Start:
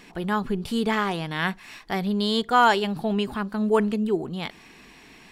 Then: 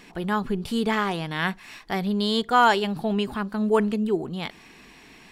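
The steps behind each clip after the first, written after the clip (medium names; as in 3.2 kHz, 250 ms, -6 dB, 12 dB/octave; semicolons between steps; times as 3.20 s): no audible change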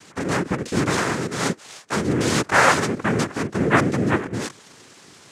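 in parallel at -9.5 dB: Schmitt trigger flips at -29.5 dBFS; on the sum: noise-vocoded speech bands 3; trim +1.5 dB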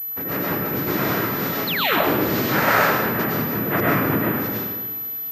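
painted sound fall, 1.67–1.99 s, 240–4600 Hz -18 dBFS; algorithmic reverb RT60 1.4 s, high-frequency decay 0.8×, pre-delay 70 ms, DRR -5.5 dB; class-D stage that switches slowly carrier 12 kHz; trim -7 dB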